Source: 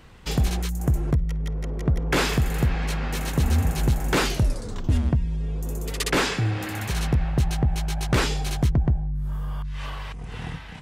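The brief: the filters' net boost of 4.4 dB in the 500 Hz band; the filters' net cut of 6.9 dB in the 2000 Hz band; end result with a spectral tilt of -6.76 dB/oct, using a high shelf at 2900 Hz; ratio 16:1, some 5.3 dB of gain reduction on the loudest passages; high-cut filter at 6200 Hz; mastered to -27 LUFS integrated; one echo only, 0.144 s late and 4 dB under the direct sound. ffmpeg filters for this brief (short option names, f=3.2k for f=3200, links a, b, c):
-af "lowpass=6.2k,equalizer=f=500:t=o:g=6,equalizer=f=2k:t=o:g=-6.5,highshelf=f=2.9k:g=-7.5,acompressor=threshold=-21dB:ratio=16,aecho=1:1:144:0.631,volume=0.5dB"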